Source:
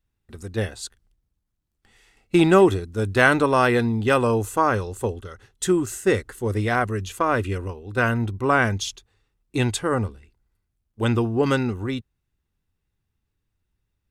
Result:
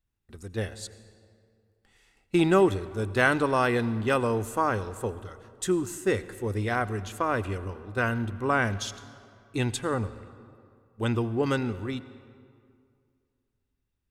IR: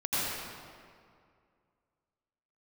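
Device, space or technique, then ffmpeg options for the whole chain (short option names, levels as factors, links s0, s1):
saturated reverb return: -filter_complex "[0:a]asplit=2[s0][s1];[1:a]atrim=start_sample=2205[s2];[s1][s2]afir=irnorm=-1:irlink=0,asoftclip=type=tanh:threshold=0.447,volume=0.0668[s3];[s0][s3]amix=inputs=2:normalize=0,volume=0.501"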